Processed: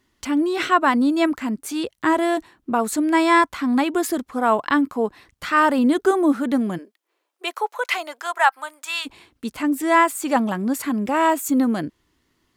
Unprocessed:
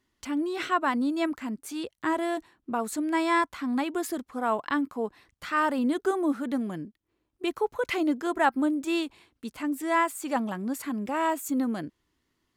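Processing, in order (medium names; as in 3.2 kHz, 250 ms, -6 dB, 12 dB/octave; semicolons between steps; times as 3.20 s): 6.77–9.05 s: high-pass 410 Hz -> 1 kHz 24 dB/octave; trim +8.5 dB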